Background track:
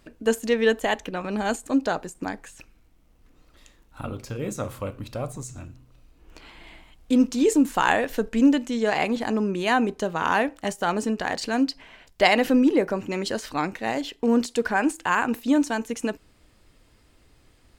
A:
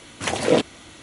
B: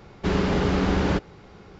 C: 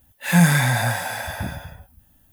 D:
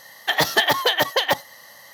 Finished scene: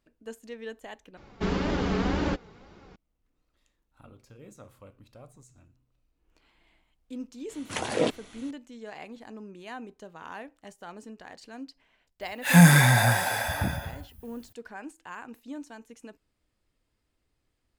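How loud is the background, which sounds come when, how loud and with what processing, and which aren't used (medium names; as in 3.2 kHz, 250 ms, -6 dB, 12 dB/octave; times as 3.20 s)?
background track -19 dB
1.17 s: replace with B -0.5 dB + flange 1.9 Hz, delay 3.1 ms, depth 1.6 ms, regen +40%
7.49 s: add A -7.5 dB
12.21 s: add C
not used: D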